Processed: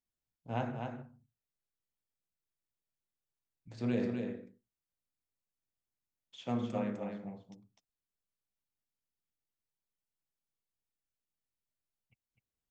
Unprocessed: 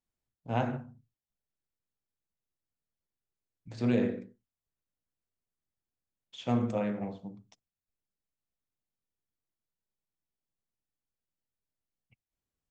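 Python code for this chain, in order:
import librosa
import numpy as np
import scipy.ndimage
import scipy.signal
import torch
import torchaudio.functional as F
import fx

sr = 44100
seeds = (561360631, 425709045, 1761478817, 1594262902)

y = fx.highpass(x, sr, hz=110.0, slope=12, at=(6.43, 7.23))
y = y + 10.0 ** (-5.5 / 20.0) * np.pad(y, (int(253 * sr / 1000.0), 0))[:len(y)]
y = y * librosa.db_to_amplitude(-5.5)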